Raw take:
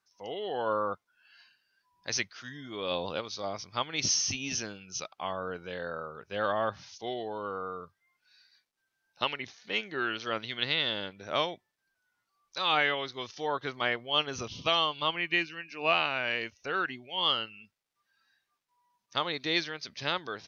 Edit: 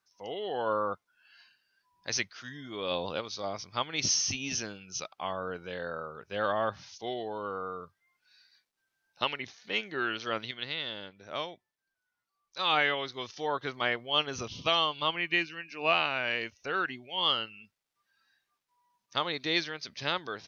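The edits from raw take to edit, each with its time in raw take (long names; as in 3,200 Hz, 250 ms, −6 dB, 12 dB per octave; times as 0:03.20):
0:10.51–0:12.59: clip gain −6.5 dB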